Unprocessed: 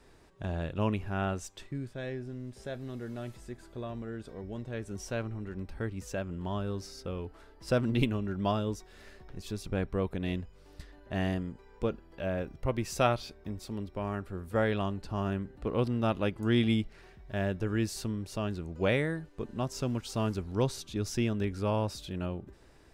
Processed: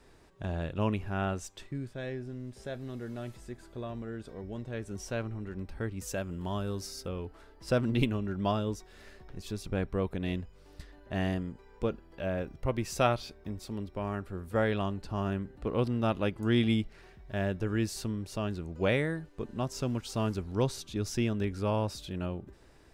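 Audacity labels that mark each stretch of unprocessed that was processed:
6.010000	7.080000	high shelf 6400 Hz +11.5 dB

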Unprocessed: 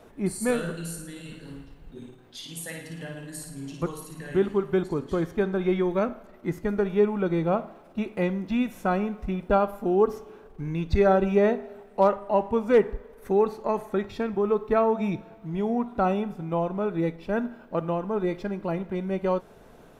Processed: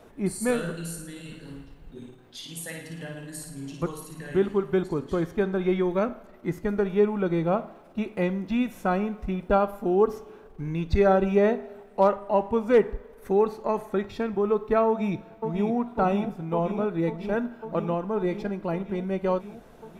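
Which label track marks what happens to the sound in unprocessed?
14.870000	15.740000	echo throw 0.55 s, feedback 80%, level -6.5 dB

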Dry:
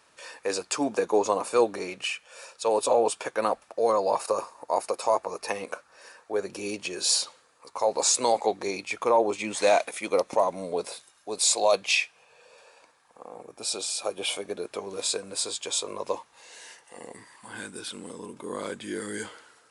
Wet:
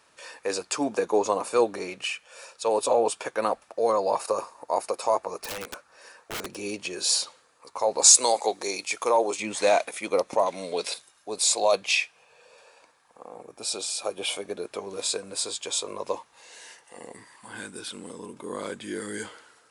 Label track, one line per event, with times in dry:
5.370000	6.550000	wrapped overs gain 27.5 dB
8.040000	9.400000	tone controls bass -10 dB, treble +10 dB
10.460000	10.940000	weighting filter D

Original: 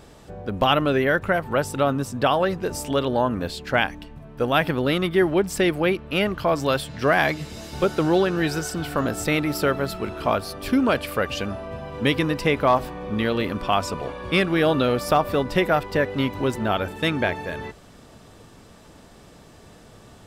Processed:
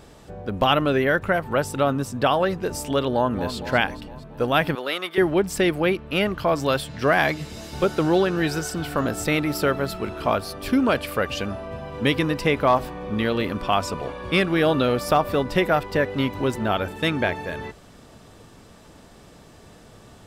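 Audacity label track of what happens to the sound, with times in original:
3.100000	3.540000	echo throw 0.23 s, feedback 60%, level -10 dB
4.750000	5.180000	HPF 610 Hz

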